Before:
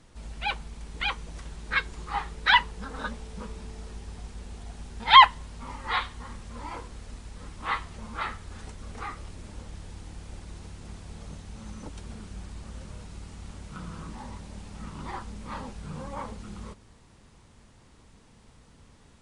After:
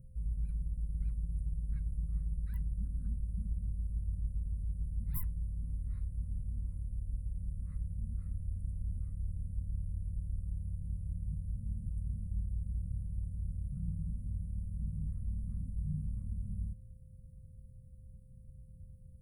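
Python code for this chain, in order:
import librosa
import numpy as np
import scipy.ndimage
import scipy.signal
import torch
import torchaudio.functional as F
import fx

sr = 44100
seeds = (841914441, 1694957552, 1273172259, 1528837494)

y = x + 10.0 ** (-32.0 / 20.0) * np.sin(2.0 * np.pi * 520.0 * np.arange(len(x)) / sr)
y = fx.clip_asym(y, sr, top_db=-7.5, bottom_db=-7.0)
y = scipy.signal.sosfilt(scipy.signal.cheby2(4, 50, [380.0, 6500.0], 'bandstop', fs=sr, output='sos'), y)
y = y * librosa.db_to_amplitude(5.5)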